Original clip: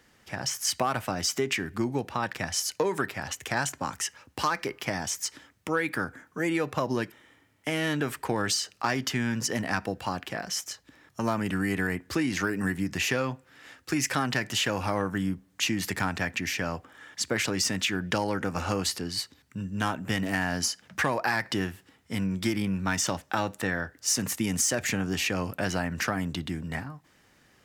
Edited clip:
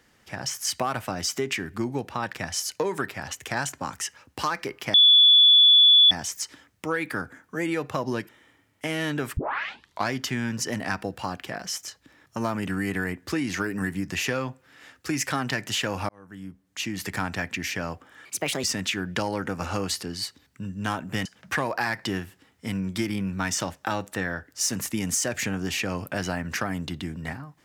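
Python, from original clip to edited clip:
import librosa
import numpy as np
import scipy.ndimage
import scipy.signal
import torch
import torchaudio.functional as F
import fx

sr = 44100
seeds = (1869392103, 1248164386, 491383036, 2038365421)

y = fx.edit(x, sr, fx.insert_tone(at_s=4.94, length_s=1.17, hz=3440.0, db=-11.5),
    fx.tape_start(start_s=8.2, length_s=0.74),
    fx.fade_in_span(start_s=14.92, length_s=1.15),
    fx.speed_span(start_s=17.08, length_s=0.51, speed=1.33),
    fx.cut(start_s=20.21, length_s=0.51), tone=tone)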